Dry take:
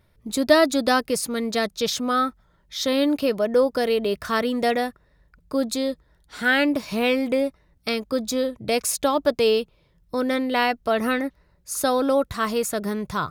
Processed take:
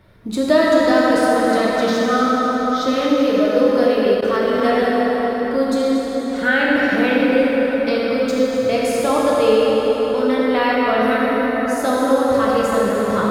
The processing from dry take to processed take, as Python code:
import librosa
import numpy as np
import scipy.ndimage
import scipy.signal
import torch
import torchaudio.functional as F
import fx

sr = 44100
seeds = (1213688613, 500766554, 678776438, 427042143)

y = fx.reverse_delay(x, sr, ms=172, wet_db=-11.5)
y = fx.echo_heads(y, sr, ms=80, heads='first and third', feedback_pct=65, wet_db=-15)
y = fx.rev_plate(y, sr, seeds[0], rt60_s=4.5, hf_ratio=0.5, predelay_ms=0, drr_db=-6.0)
y = fx.level_steps(y, sr, step_db=17, at=(4.14, 4.65))
y = fx.high_shelf(y, sr, hz=4800.0, db=-11.5)
y = fx.band_squash(y, sr, depth_pct=40)
y = y * librosa.db_to_amplitude(-1.0)